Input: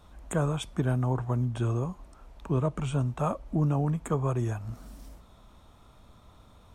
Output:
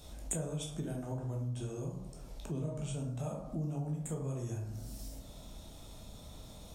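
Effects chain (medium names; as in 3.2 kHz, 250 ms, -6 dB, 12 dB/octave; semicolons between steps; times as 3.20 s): reverberation RT60 0.75 s, pre-delay 9 ms, DRR -1.5 dB; compression 2.5:1, threshold -45 dBFS, peak gain reduction 18.5 dB; FFT filter 690 Hz 0 dB, 1.1 kHz -11 dB, 5.2 kHz +10 dB; trim +1.5 dB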